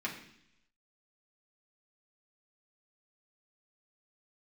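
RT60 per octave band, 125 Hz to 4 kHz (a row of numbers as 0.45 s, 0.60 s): 0.90 s, 0.85 s, 0.75 s, 0.70 s, 0.90 s, 0.95 s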